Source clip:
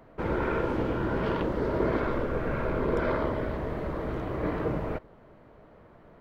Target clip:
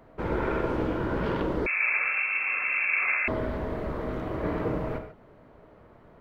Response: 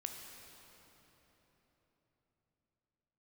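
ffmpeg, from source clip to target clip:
-filter_complex "[1:a]atrim=start_sample=2205,atrim=end_sample=6615[s0];[0:a][s0]afir=irnorm=-1:irlink=0,asettb=1/sr,asplit=3[s1][s2][s3];[s1]atrim=end=1.664[s4];[s2]atrim=start=1.66:end=3.28,asetpts=PTS-STARTPTS,afade=t=in:d=0.004:c=qsin,afade=t=out:st=1.616:d=0.004:c=qsin,lowpass=f=2300:t=q:w=0.5098,lowpass=f=2300:t=q:w=0.6013,lowpass=f=2300:t=q:w=0.9,lowpass=f=2300:t=q:w=2.563,afreqshift=-2700[s5];[s3]atrim=start=3.276[s6];[s4][s5]acrossfade=d=0.004:c1=hsin:c2=qsin[s7];[s7][s6]acrossfade=d=0.004:c1=qsin:c2=hsin,volume=1.41"

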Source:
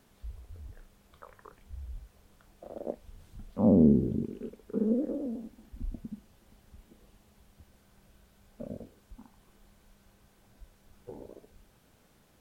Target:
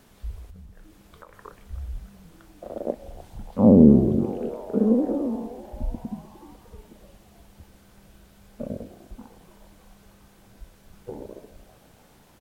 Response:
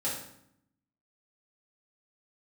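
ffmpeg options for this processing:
-filter_complex "[0:a]asplit=2[s0][s1];[1:a]atrim=start_sample=2205,adelay=121[s2];[s1][s2]afir=irnorm=-1:irlink=0,volume=0.0501[s3];[s0][s3]amix=inputs=2:normalize=0,asettb=1/sr,asplit=3[s4][s5][s6];[s4]atrim=end=0.474[s7];[s5]atrim=start=0.47:end=1.34,asetpts=PTS-STARTPTS,afade=t=in:d=0.004:c=qsin,afade=t=out:st=0.866:d=0.004:c=qsin,acompressor=threshold=0.00316:ratio=10[s8];[s6]atrim=start=1.336[s9];[s7][s8]acrossfade=d=0.004:c1=hsin:c2=qsin[s10];[s10][s9]acrossfade=d=0.004:c1=qsin:c2=hsin,asplit=6[s11][s12][s13][s14][s15][s16];[s12]adelay=301,afreqshift=130,volume=0.112[s17];[s13]adelay=602,afreqshift=260,volume=0.0676[s18];[s14]adelay=903,afreqshift=390,volume=0.0403[s19];[s15]adelay=1204,afreqshift=520,volume=0.0243[s20];[s16]adelay=1505,afreqshift=650,volume=0.0146[s21];[s11][s17][s18][s19][s20][s21]amix=inputs=6:normalize=0,volume=2.51"

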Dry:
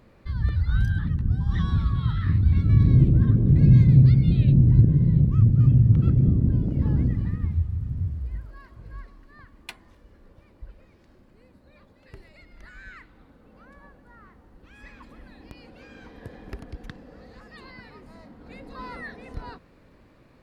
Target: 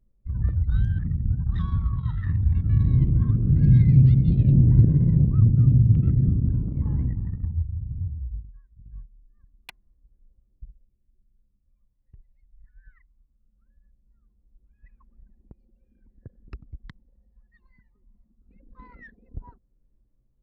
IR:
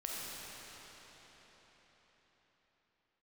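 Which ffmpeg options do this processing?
-af "highshelf=f=2700:g=4,anlmdn=15.8,aphaser=in_gain=1:out_gain=1:delay=1.1:decay=0.51:speed=0.2:type=sinusoidal,volume=0.501"

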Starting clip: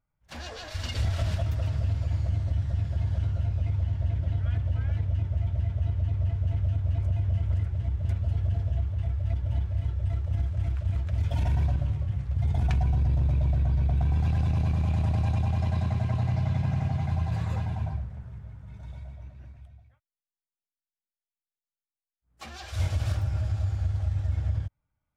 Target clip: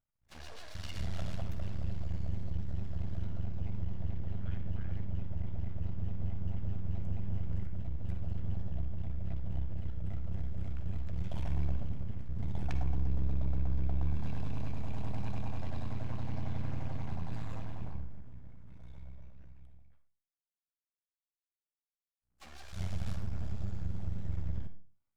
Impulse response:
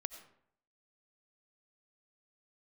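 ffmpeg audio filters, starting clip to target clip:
-filter_complex "[0:a]aeval=exprs='max(val(0),0)':c=same[s0];[1:a]atrim=start_sample=2205,asetrate=74970,aresample=44100[s1];[s0][s1]afir=irnorm=-1:irlink=0"

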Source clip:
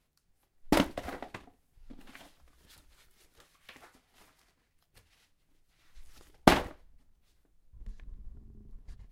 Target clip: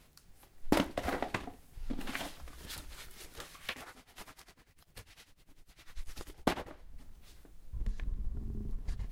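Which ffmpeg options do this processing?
-filter_complex "[0:a]acompressor=threshold=0.00562:ratio=3,asplit=3[s0][s1][s2];[s0]afade=t=out:st=3.72:d=0.02[s3];[s1]tremolo=f=10:d=0.85,afade=t=in:st=3.72:d=0.02,afade=t=out:st=6.66:d=0.02[s4];[s2]afade=t=in:st=6.66:d=0.02[s5];[s3][s4][s5]amix=inputs=3:normalize=0,volume=4.73"

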